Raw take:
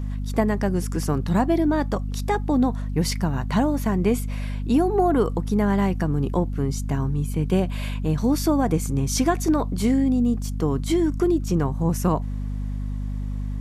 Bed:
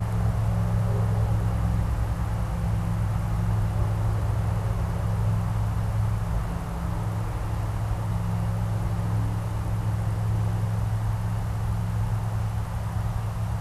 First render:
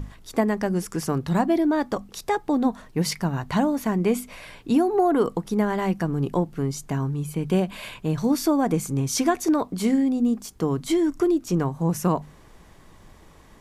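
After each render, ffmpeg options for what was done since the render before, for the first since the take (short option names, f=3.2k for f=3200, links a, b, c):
-af "bandreject=f=50:t=h:w=6,bandreject=f=100:t=h:w=6,bandreject=f=150:t=h:w=6,bandreject=f=200:t=h:w=6,bandreject=f=250:t=h:w=6"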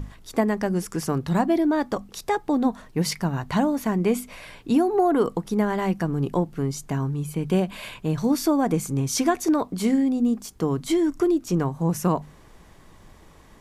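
-af anull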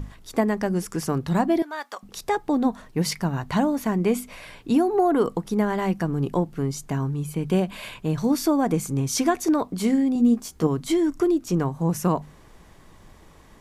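-filter_complex "[0:a]asettb=1/sr,asplit=3[a][b][c];[a]atrim=end=1.624[d];[b]atrim=start=1.62:end=2.03,asetpts=PTS-STARTPTS,afade=t=in:d=0.004:c=qsin,afade=t=out:st=0.406:d=0.004:c=qsin,highpass=1.1k[e];[c]atrim=start=2.026[f];[d][e]acrossfade=d=0.004:c1=hsin:c2=qsin[g];[g][f]acrossfade=d=0.004:c1=qsin:c2=hsin,asettb=1/sr,asplit=3[h][i][j];[h]atrim=end=10.144[k];[i]atrim=start=10.14:end=10.67,asetpts=PTS-STARTPTS,afade=t=in:d=0.004:c=qsin,afade=t=out:st=0.526:d=0.004:c=qsin,asplit=2[l][m];[m]adelay=13,volume=-3.5dB[n];[l][n]amix=inputs=2:normalize=0,atrim=end_sample=23373[o];[j]atrim=start=10.666[p];[k][o]acrossfade=d=0.004:c1=hsin:c2=qsin[q];[q][p]acrossfade=d=0.004:c1=qsin:c2=hsin"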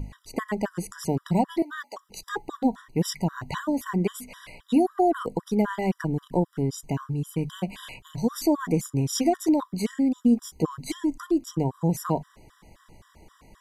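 -af "afftfilt=real='re*gt(sin(2*PI*3.8*pts/sr)*(1-2*mod(floor(b*sr/1024/980),2)),0)':imag='im*gt(sin(2*PI*3.8*pts/sr)*(1-2*mod(floor(b*sr/1024/980),2)),0)':win_size=1024:overlap=0.75"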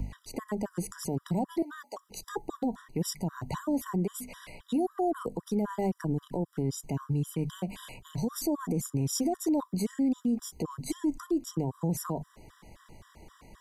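-filter_complex "[0:a]acrossover=split=100|960|5500[a][b][c][d];[c]acompressor=threshold=-49dB:ratio=6[e];[a][b][e][d]amix=inputs=4:normalize=0,alimiter=limit=-21dB:level=0:latency=1:release=66"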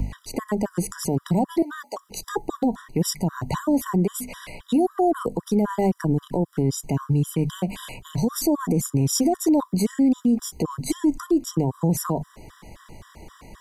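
-af "volume=8.5dB"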